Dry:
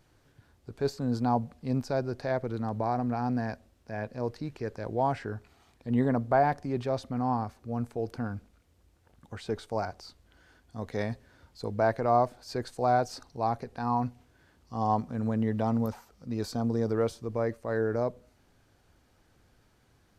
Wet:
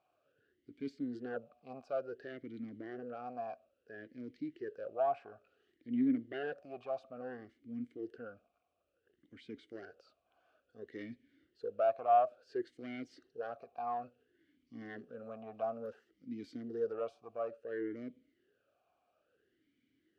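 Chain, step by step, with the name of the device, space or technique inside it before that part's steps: talk box (valve stage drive 21 dB, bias 0.55; talking filter a-i 0.58 Hz); trim +4 dB

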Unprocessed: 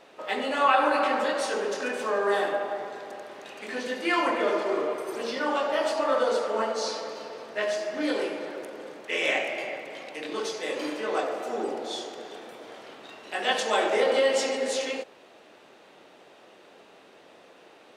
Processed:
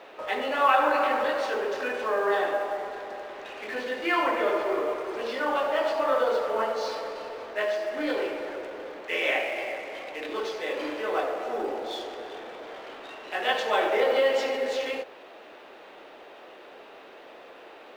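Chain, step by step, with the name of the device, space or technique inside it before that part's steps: phone line with mismatched companding (band-pass 320–3300 Hz; companding laws mixed up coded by mu)

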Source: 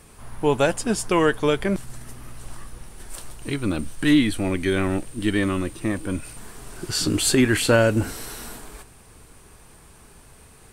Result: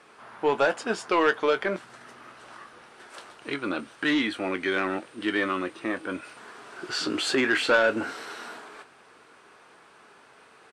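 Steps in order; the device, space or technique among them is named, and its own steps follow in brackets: intercom (band-pass 390–3900 Hz; peaking EQ 1.4 kHz +5.5 dB 0.5 oct; saturation -13.5 dBFS, distortion -14 dB; doubling 22 ms -12 dB)

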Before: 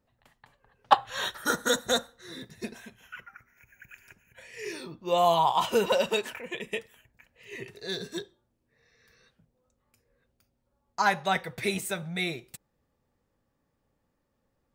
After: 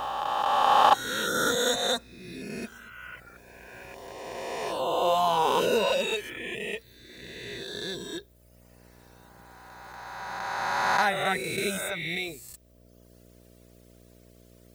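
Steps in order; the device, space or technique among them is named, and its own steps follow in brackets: reverse spectral sustain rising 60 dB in 2.91 s; video cassette with head-switching buzz (mains buzz 60 Hz, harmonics 11, -49 dBFS -3 dB/octave; white noise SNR 34 dB); reverb removal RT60 1.2 s; trim -2.5 dB

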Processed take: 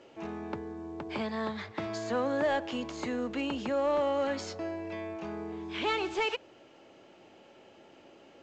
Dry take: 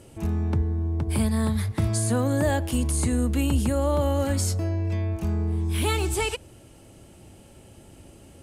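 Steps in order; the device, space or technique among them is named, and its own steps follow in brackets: telephone (band-pass 400–3400 Hz; saturation -21 dBFS, distortion -20 dB; µ-law 128 kbps 16 kHz)

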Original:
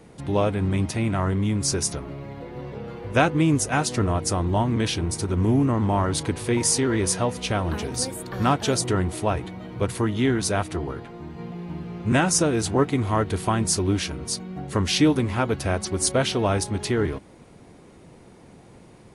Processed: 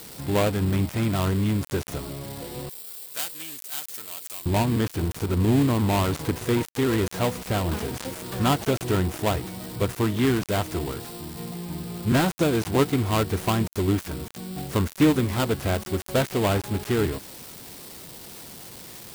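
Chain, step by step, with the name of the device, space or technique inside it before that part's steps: budget class-D amplifier (dead-time distortion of 0.23 ms; zero-crossing glitches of -23 dBFS); 2.69–4.46 s: differentiator

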